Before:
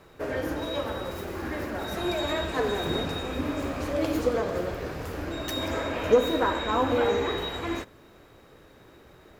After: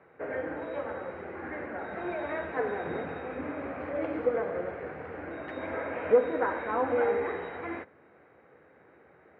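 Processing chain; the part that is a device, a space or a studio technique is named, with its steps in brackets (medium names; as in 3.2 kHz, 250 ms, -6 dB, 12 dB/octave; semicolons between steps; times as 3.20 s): bass cabinet (cabinet simulation 87–2300 Hz, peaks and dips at 110 Hz -8 dB, 490 Hz +6 dB, 770 Hz +6 dB, 1.5 kHz +5 dB, 2.1 kHz +7 dB); trim -7.5 dB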